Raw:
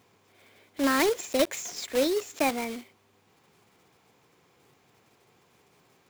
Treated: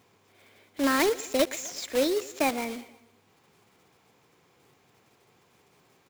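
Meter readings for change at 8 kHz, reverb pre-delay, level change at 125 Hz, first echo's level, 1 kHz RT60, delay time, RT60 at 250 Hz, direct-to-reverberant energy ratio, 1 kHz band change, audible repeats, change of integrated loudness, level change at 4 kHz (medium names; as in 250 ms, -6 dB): 0.0 dB, no reverb, 0.0 dB, -20.0 dB, no reverb, 119 ms, no reverb, no reverb, 0.0 dB, 3, 0.0 dB, 0.0 dB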